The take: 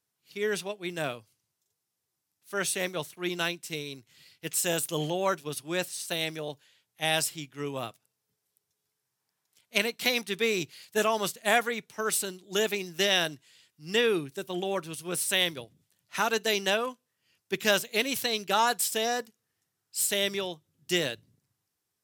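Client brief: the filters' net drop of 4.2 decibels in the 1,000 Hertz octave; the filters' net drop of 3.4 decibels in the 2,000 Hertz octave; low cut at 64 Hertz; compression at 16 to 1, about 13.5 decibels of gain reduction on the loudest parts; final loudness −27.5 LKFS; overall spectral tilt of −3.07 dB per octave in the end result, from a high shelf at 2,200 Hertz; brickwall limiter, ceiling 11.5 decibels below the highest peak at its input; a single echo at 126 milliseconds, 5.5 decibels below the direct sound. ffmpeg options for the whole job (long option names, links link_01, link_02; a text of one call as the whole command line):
ffmpeg -i in.wav -af "highpass=64,equalizer=frequency=1000:width_type=o:gain=-5.5,equalizer=frequency=2000:width_type=o:gain=-6,highshelf=frequency=2200:gain=5,acompressor=threshold=-33dB:ratio=16,alimiter=level_in=4dB:limit=-24dB:level=0:latency=1,volume=-4dB,aecho=1:1:126:0.531,volume=11.5dB" out.wav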